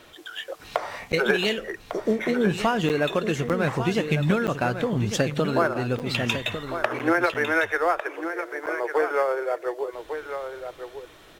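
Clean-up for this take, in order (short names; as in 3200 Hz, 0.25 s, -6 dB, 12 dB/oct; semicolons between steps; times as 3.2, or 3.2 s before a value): clip repair -8 dBFS; interpolate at 1.12/2.89/3.49/4.47/5.99/6.99/7.34/8.66, 8.3 ms; inverse comb 1.151 s -9 dB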